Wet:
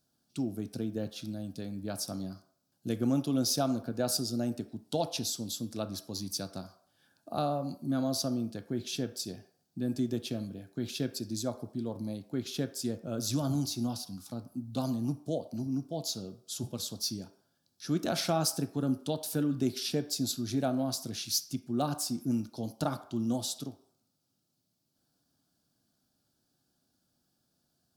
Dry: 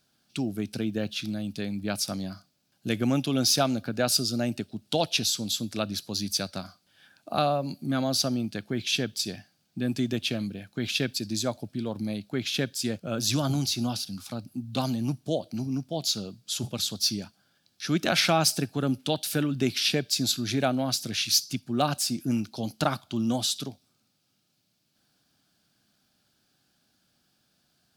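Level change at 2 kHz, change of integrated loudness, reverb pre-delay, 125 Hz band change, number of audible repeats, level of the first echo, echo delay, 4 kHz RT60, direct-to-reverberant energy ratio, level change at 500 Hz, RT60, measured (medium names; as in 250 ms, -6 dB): -14.0 dB, -6.0 dB, 3 ms, -4.5 dB, no echo, no echo, no echo, 0.60 s, 8.5 dB, -5.0 dB, 0.55 s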